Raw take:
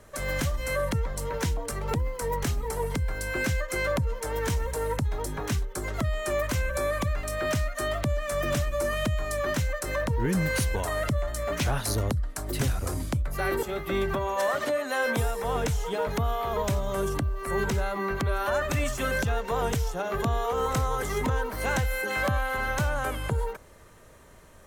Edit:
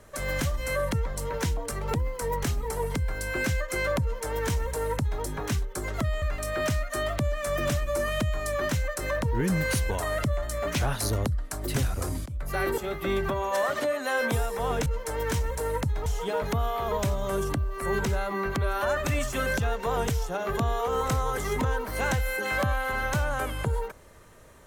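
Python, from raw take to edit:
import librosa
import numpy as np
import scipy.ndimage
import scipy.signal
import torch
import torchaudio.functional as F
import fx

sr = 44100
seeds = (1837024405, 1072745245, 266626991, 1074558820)

y = fx.edit(x, sr, fx.duplicate(start_s=4.02, length_s=1.2, to_s=15.71),
    fx.cut(start_s=6.22, length_s=0.85),
    fx.fade_in_from(start_s=13.11, length_s=0.29, curve='qsin', floor_db=-23.0), tone=tone)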